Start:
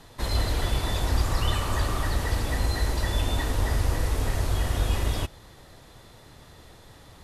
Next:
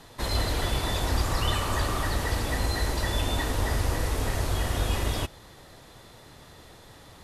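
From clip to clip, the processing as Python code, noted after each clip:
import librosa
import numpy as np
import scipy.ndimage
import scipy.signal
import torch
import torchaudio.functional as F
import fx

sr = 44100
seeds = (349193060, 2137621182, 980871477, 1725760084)

y = fx.low_shelf(x, sr, hz=110.0, db=-5.5)
y = y * librosa.db_to_amplitude(1.5)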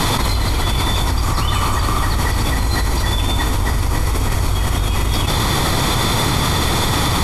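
y = x + 0.44 * np.pad(x, (int(0.9 * sr / 1000.0), 0))[:len(x)]
y = fx.env_flatten(y, sr, amount_pct=100)
y = y * librosa.db_to_amplitude(2.5)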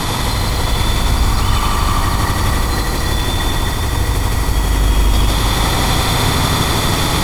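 y = x + 10.0 ** (-5.5 / 20.0) * np.pad(x, (int(83 * sr / 1000.0), 0))[:len(x)]
y = fx.echo_crushed(y, sr, ms=162, feedback_pct=80, bits=6, wet_db=-4.0)
y = y * librosa.db_to_amplitude(-2.0)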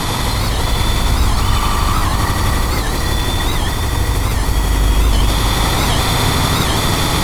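y = fx.record_warp(x, sr, rpm=78.0, depth_cents=160.0)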